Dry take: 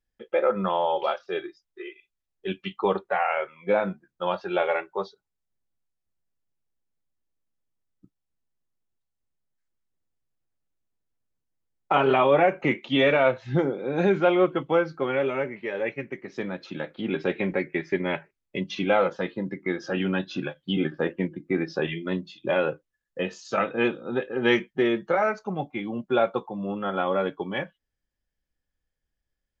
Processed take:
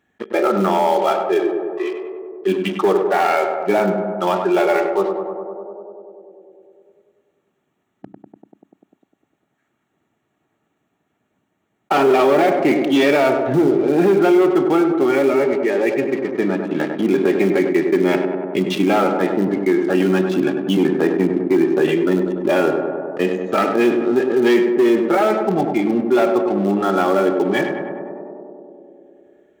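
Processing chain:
adaptive Wiener filter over 9 samples
notch comb filter 510 Hz
four-comb reverb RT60 0.48 s, combs from 29 ms, DRR 16 dB
in parallel at −11.5 dB: bit reduction 4 bits
on the sum: leveller curve on the samples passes 3
high-pass filter 180 Hz 12 dB per octave
on a send: tape delay 99 ms, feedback 77%, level −7.5 dB, low-pass 1,300 Hz
on the sum: dynamic equaliser 350 Hz, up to +7 dB, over −30 dBFS, Q 1.5
envelope flattener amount 50%
level −7.5 dB

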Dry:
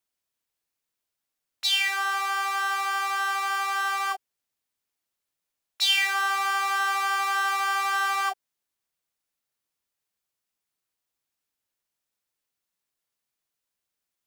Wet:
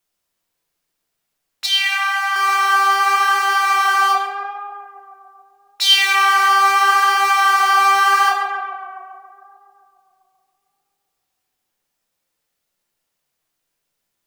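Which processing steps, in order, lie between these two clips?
0:01.66–0:02.36: Chebyshev high-pass with heavy ripple 480 Hz, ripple 6 dB
tape delay 138 ms, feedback 78%, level −4.5 dB, low-pass 2,100 Hz
rectangular room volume 160 cubic metres, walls mixed, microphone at 0.86 metres
level +6.5 dB

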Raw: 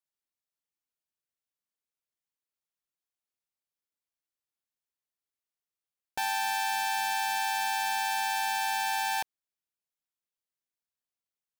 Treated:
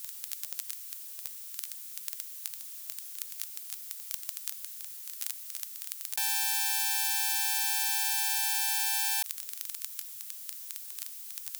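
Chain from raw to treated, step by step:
surface crackle 12 per second −58 dBFS
first difference
envelope flattener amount 100%
level +6.5 dB

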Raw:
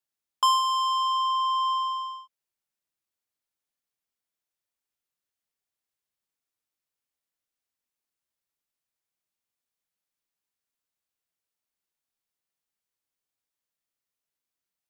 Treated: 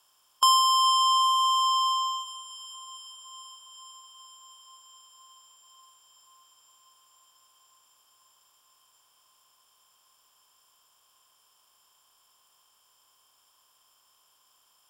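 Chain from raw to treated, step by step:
compressor on every frequency bin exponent 0.6
high-shelf EQ 3,500 Hz +8.5 dB
feedback delay with all-pass diffusion 464 ms, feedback 78%, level −15.5 dB
level −1 dB

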